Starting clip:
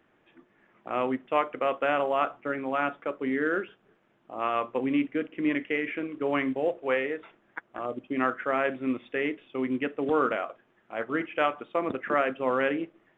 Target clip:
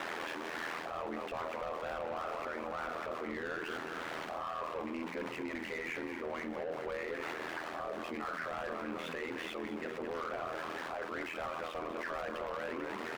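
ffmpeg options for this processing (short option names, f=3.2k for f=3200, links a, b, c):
-filter_complex "[0:a]aeval=exprs='val(0)+0.5*0.0224*sgn(val(0))':c=same,lowshelf=f=170:g=-10.5,asplit=7[a][b][c][d][e][f][g];[b]adelay=214,afreqshift=-53,volume=-12dB[h];[c]adelay=428,afreqshift=-106,volume=-16.9dB[i];[d]adelay=642,afreqshift=-159,volume=-21.8dB[j];[e]adelay=856,afreqshift=-212,volume=-26.6dB[k];[f]adelay=1070,afreqshift=-265,volume=-31.5dB[l];[g]adelay=1284,afreqshift=-318,volume=-36.4dB[m];[a][h][i][j][k][l][m]amix=inputs=7:normalize=0,asplit=2[n][o];[o]aeval=exprs='(mod(6.31*val(0)+1,2)-1)/6.31':c=same,volume=-4dB[p];[n][p]amix=inputs=2:normalize=0,bandreject=f=50:t=h:w=6,bandreject=f=100:t=h:w=6,bandreject=f=150:t=h:w=6,bandreject=f=200:t=h:w=6,bandreject=f=250:t=h:w=6,bandreject=f=300:t=h:w=6,bandreject=f=350:t=h:w=6,bandreject=f=400:t=h:w=6,asplit=2[q][r];[r]highpass=f=720:p=1,volume=22dB,asoftclip=type=tanh:threshold=-9.5dB[s];[q][s]amix=inputs=2:normalize=0,lowpass=f=1.4k:p=1,volume=-6dB,aeval=exprs='val(0)*sin(2*PI*41*n/s)':c=same,areverse,acompressor=threshold=-34dB:ratio=6,areverse,alimiter=level_in=10dB:limit=-24dB:level=0:latency=1:release=474,volume=-10dB,volume=3dB"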